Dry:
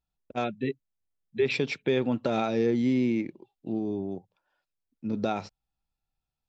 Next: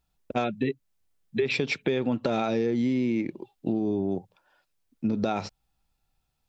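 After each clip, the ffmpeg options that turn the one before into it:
ffmpeg -i in.wav -filter_complex "[0:a]asplit=2[link_01][link_02];[link_02]alimiter=level_in=0.5dB:limit=-24dB:level=0:latency=1:release=223,volume=-0.5dB,volume=2.5dB[link_03];[link_01][link_03]amix=inputs=2:normalize=0,acompressor=threshold=-26dB:ratio=5,volume=3dB" out.wav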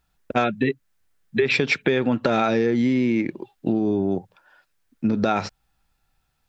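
ffmpeg -i in.wav -af "equalizer=frequency=1600:width_type=o:width=0.83:gain=7.5,volume=5dB" out.wav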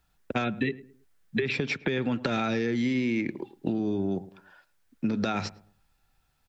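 ffmpeg -i in.wav -filter_complex "[0:a]acrossover=split=270|1500[link_01][link_02][link_03];[link_01]acompressor=threshold=-29dB:ratio=4[link_04];[link_02]acompressor=threshold=-33dB:ratio=4[link_05];[link_03]acompressor=threshold=-32dB:ratio=4[link_06];[link_04][link_05][link_06]amix=inputs=3:normalize=0,asplit=2[link_07][link_08];[link_08]adelay=108,lowpass=frequency=1100:poles=1,volume=-17dB,asplit=2[link_09][link_10];[link_10]adelay=108,lowpass=frequency=1100:poles=1,volume=0.35,asplit=2[link_11][link_12];[link_12]adelay=108,lowpass=frequency=1100:poles=1,volume=0.35[link_13];[link_07][link_09][link_11][link_13]amix=inputs=4:normalize=0" out.wav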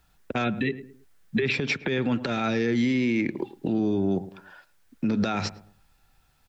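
ffmpeg -i in.wav -af "alimiter=limit=-23dB:level=0:latency=1:release=100,volume=6.5dB" out.wav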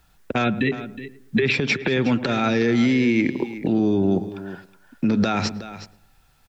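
ffmpeg -i in.wav -af "aecho=1:1:367:0.2,volume=5dB" out.wav

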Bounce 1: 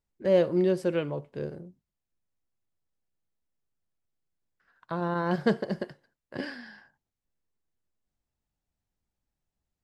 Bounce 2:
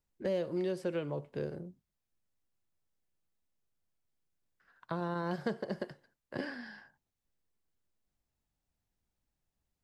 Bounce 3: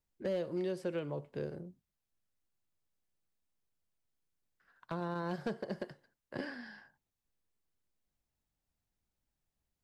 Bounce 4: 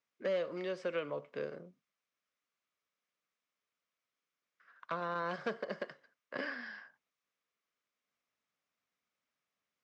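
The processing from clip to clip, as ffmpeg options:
ffmpeg -i in.wav -filter_complex "[0:a]acrossover=split=460|1800|3900[link_01][link_02][link_03][link_04];[link_01]acompressor=threshold=-37dB:ratio=4[link_05];[link_02]acompressor=threshold=-38dB:ratio=4[link_06];[link_03]acompressor=threshold=-55dB:ratio=4[link_07];[link_04]acompressor=threshold=-57dB:ratio=4[link_08];[link_05][link_06][link_07][link_08]amix=inputs=4:normalize=0" out.wav
ffmpeg -i in.wav -af "aeval=exprs='clip(val(0),-1,0.0422)':channel_layout=same,volume=-2dB" out.wav
ffmpeg -i in.wav -af "highpass=340,equalizer=frequency=350:width_type=q:width=4:gain=-8,equalizer=frequency=830:width_type=q:width=4:gain=-8,equalizer=frequency=1200:width_type=q:width=4:gain=7,equalizer=frequency=2200:width_type=q:width=4:gain=5,equalizer=frequency=4400:width_type=q:width=4:gain=-5,lowpass=frequency=6000:width=0.5412,lowpass=frequency=6000:width=1.3066,volume=4dB" out.wav

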